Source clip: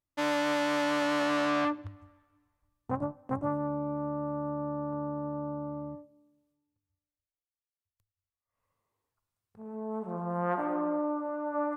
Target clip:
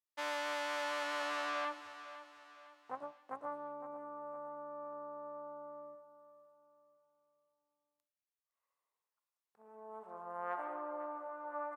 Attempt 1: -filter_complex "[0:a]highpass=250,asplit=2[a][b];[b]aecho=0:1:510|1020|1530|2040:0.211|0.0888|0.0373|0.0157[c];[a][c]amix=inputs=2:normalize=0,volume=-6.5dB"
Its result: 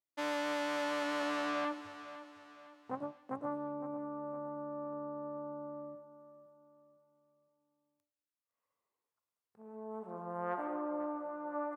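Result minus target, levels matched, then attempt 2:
250 Hz band +10.0 dB
-filter_complex "[0:a]highpass=670,asplit=2[a][b];[b]aecho=0:1:510|1020|1530|2040:0.211|0.0888|0.0373|0.0157[c];[a][c]amix=inputs=2:normalize=0,volume=-6.5dB"

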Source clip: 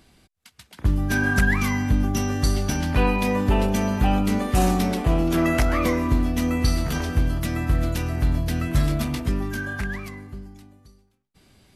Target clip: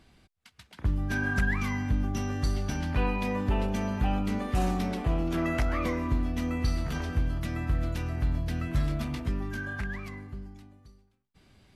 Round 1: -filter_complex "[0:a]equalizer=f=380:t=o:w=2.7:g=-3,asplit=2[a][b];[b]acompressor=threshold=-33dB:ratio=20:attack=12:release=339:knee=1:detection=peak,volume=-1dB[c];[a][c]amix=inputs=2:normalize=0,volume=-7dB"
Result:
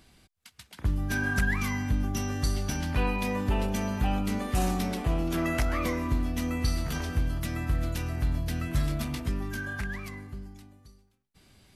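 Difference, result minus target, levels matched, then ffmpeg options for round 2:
4000 Hz band +3.5 dB
-filter_complex "[0:a]lowpass=f=3.2k:p=1,equalizer=f=380:t=o:w=2.7:g=-3,asplit=2[a][b];[b]acompressor=threshold=-33dB:ratio=20:attack=12:release=339:knee=1:detection=peak,volume=-1dB[c];[a][c]amix=inputs=2:normalize=0,volume=-7dB"

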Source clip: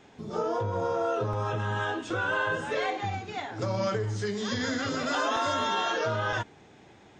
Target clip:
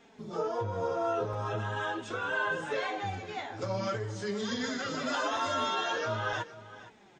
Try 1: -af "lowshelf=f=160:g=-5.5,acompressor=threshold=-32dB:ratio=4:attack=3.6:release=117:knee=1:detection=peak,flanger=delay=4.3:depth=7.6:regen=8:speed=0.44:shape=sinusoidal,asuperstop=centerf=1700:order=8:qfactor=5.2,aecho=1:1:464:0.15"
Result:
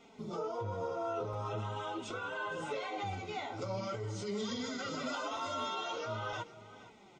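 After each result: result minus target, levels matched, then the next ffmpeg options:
compressor: peak gain reduction +8 dB; 2000 Hz band -3.5 dB
-af "lowshelf=f=160:g=-5.5,flanger=delay=4.3:depth=7.6:regen=8:speed=0.44:shape=sinusoidal,asuperstop=centerf=1700:order=8:qfactor=5.2,aecho=1:1:464:0.15"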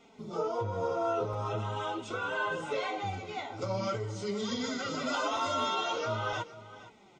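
2000 Hz band -3.0 dB
-af "lowshelf=f=160:g=-5.5,flanger=delay=4.3:depth=7.6:regen=8:speed=0.44:shape=sinusoidal,aecho=1:1:464:0.15"

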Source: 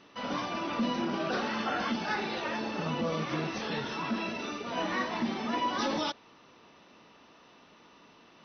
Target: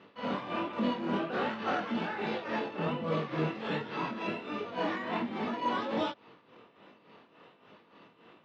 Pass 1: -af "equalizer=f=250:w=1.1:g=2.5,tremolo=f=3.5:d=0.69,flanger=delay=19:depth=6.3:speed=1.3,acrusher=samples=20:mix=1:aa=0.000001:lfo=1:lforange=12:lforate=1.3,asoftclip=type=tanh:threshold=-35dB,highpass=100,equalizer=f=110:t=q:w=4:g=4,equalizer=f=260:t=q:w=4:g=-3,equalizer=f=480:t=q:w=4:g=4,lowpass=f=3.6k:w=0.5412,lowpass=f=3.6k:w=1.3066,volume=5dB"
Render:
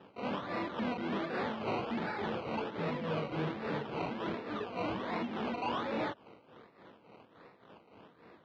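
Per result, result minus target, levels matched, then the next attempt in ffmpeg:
soft clip: distortion +13 dB; decimation with a swept rate: distortion +11 dB
-af "equalizer=f=250:w=1.1:g=2.5,tremolo=f=3.5:d=0.69,flanger=delay=19:depth=6.3:speed=1.3,acrusher=samples=20:mix=1:aa=0.000001:lfo=1:lforange=12:lforate=1.3,asoftclip=type=tanh:threshold=-24dB,highpass=100,equalizer=f=110:t=q:w=4:g=4,equalizer=f=260:t=q:w=4:g=-3,equalizer=f=480:t=q:w=4:g=4,lowpass=f=3.6k:w=0.5412,lowpass=f=3.6k:w=1.3066,volume=5dB"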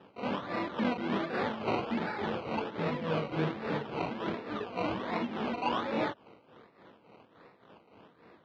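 decimation with a swept rate: distortion +11 dB
-af "equalizer=f=250:w=1.1:g=2.5,tremolo=f=3.5:d=0.69,flanger=delay=19:depth=6.3:speed=1.3,acrusher=samples=5:mix=1:aa=0.000001:lfo=1:lforange=3:lforate=1.3,asoftclip=type=tanh:threshold=-24dB,highpass=100,equalizer=f=110:t=q:w=4:g=4,equalizer=f=260:t=q:w=4:g=-3,equalizer=f=480:t=q:w=4:g=4,lowpass=f=3.6k:w=0.5412,lowpass=f=3.6k:w=1.3066,volume=5dB"

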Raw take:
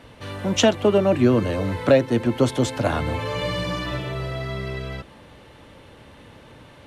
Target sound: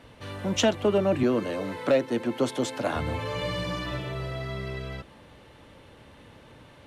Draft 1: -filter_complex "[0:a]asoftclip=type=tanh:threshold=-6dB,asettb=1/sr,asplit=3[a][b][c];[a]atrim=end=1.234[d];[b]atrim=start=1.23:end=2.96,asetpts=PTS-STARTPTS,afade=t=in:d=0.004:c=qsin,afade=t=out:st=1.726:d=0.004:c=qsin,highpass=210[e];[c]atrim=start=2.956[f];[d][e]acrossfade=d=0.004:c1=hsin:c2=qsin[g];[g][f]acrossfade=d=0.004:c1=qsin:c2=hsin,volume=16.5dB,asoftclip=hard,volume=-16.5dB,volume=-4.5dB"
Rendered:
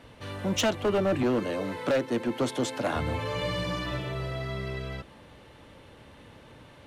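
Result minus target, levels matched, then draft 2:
overloaded stage: distortion +18 dB
-filter_complex "[0:a]asoftclip=type=tanh:threshold=-6dB,asettb=1/sr,asplit=3[a][b][c];[a]atrim=end=1.234[d];[b]atrim=start=1.23:end=2.96,asetpts=PTS-STARTPTS,afade=t=in:d=0.004:c=qsin,afade=t=out:st=1.726:d=0.004:c=qsin,highpass=210[e];[c]atrim=start=2.956[f];[d][e]acrossfade=d=0.004:c1=hsin:c2=qsin[g];[g][f]acrossfade=d=0.004:c1=qsin:c2=hsin,volume=9.5dB,asoftclip=hard,volume=-9.5dB,volume=-4.5dB"

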